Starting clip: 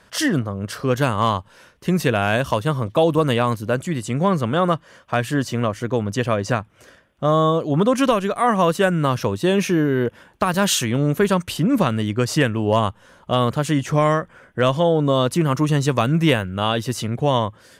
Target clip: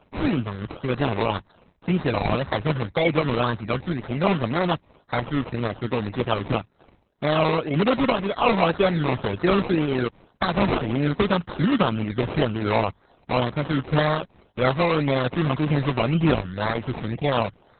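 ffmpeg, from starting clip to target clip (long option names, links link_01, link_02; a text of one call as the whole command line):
ffmpeg -i in.wav -af "acrusher=samples=22:mix=1:aa=0.000001:lfo=1:lforange=13.2:lforate=1.9,volume=-2.5dB" -ar 48000 -c:a libopus -b:a 6k out.opus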